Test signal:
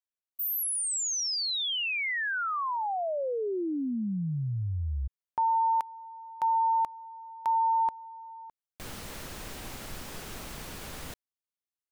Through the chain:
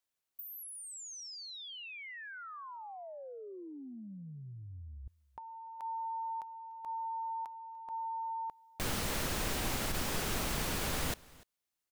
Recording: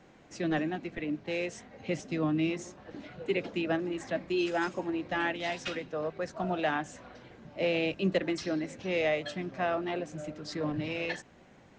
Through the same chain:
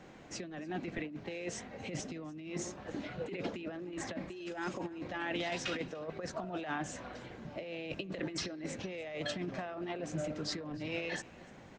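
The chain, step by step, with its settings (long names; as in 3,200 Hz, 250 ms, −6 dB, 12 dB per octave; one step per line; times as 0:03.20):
brickwall limiter −27 dBFS
compressor whose output falls as the input rises −38 dBFS, ratio −0.5
on a send: single-tap delay 294 ms −23 dB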